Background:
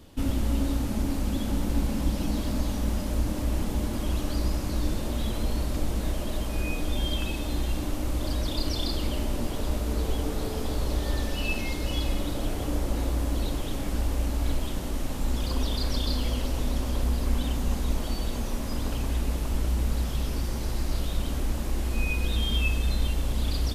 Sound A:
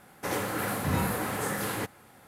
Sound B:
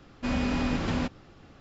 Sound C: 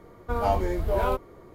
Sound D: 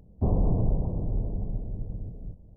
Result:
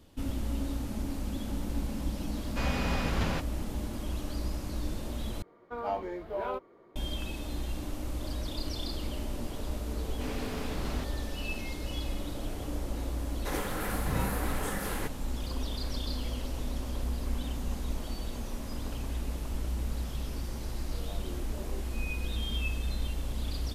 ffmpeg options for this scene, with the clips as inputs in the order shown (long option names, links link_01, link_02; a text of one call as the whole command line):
ffmpeg -i bed.wav -i cue0.wav -i cue1.wav -i cue2.wav -filter_complex "[2:a]asplit=2[link_01][link_02];[3:a]asplit=2[link_03][link_04];[0:a]volume=-7dB[link_05];[link_01]equalizer=frequency=270:width_type=o:width=0.47:gain=-13[link_06];[link_03]acrossover=split=180 4400:gain=0.158 1 0.2[link_07][link_08][link_09];[link_07][link_08][link_09]amix=inputs=3:normalize=0[link_10];[link_02]aeval=exprs='0.0473*(abs(mod(val(0)/0.0473+3,4)-2)-1)':channel_layout=same[link_11];[link_04]bandpass=frequency=390:width_type=q:width=2.9:csg=0[link_12];[link_05]asplit=2[link_13][link_14];[link_13]atrim=end=5.424[link_15];[link_10]atrim=end=1.54,asetpts=PTS-STARTPTS,volume=-8dB[link_16];[link_14]atrim=start=6.956[link_17];[link_06]atrim=end=1.6,asetpts=PTS-STARTPTS,volume=-0.5dB,afade=type=in:duration=0.004:curve=hsin,afade=type=out:start_time=1.596:duration=0.004:curve=hsin,adelay=2330[link_18];[link_11]atrim=end=1.6,asetpts=PTS-STARTPTS,volume=-7.5dB,afade=type=in:duration=0.004:curve=hsin,afade=type=out:start_time=1.596:duration=0.004:curve=hsin,adelay=9970[link_19];[1:a]atrim=end=2.27,asetpts=PTS-STARTPTS,volume=-4.5dB,afade=type=in:duration=0.004:curve=hsin,afade=type=out:start_time=2.266:duration=0.004:curve=hsin,adelay=13220[link_20];[link_12]atrim=end=1.54,asetpts=PTS-STARTPTS,volume=-15dB,afade=type=in:duration=0.004:curve=hsin,afade=type=out:start_time=1.536:duration=0.004:curve=hsin,adelay=20640[link_21];[link_15][link_16]acrossfade=duration=0.004:curve1=hsin:curve2=hsin[link_22];[link_22][link_17]acrossfade=duration=0.004:curve1=hsin:curve2=hsin[link_23];[link_23][link_18][link_19][link_20][link_21]amix=inputs=5:normalize=0" out.wav